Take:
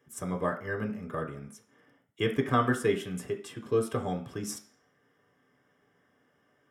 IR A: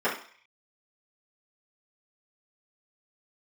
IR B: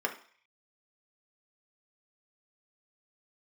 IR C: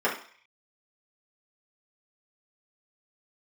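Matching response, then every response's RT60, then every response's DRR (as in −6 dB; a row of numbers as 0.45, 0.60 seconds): B; 0.45, 0.45, 0.45 seconds; −13.0, 1.5, −8.0 decibels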